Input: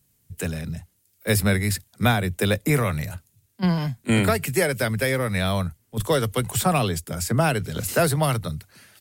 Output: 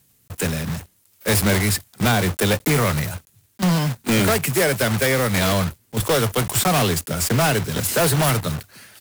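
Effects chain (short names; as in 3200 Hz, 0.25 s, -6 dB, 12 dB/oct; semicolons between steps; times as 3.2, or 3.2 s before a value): block floating point 3-bit; low shelf 90 Hz -5.5 dB; hard clip -20.5 dBFS, distortion -9 dB; gain +6 dB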